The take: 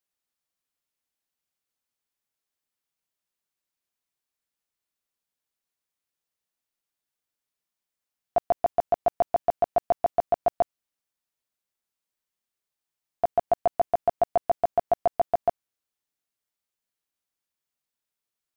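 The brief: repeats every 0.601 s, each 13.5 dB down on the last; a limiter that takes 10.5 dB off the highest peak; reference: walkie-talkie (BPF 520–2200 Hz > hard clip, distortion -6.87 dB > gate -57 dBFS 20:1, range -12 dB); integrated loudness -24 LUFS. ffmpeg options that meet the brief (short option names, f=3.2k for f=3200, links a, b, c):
-af "alimiter=level_in=0.5dB:limit=-24dB:level=0:latency=1,volume=-0.5dB,highpass=520,lowpass=2.2k,aecho=1:1:601|1202:0.211|0.0444,asoftclip=type=hard:threshold=-36.5dB,agate=range=-12dB:threshold=-57dB:ratio=20,volume=22dB"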